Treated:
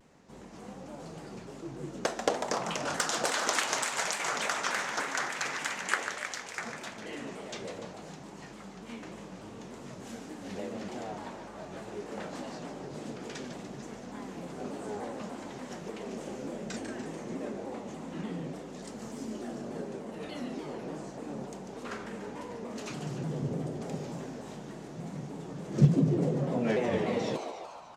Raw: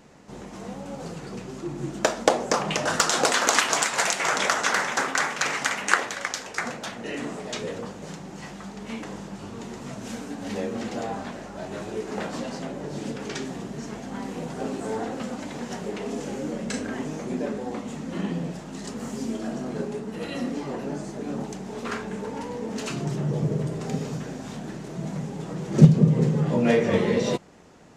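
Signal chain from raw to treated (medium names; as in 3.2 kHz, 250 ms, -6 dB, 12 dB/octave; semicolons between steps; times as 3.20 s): frequency-shifting echo 146 ms, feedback 62%, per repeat +110 Hz, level -8 dB; vibrato with a chosen wave saw down 3.4 Hz, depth 160 cents; trim -9 dB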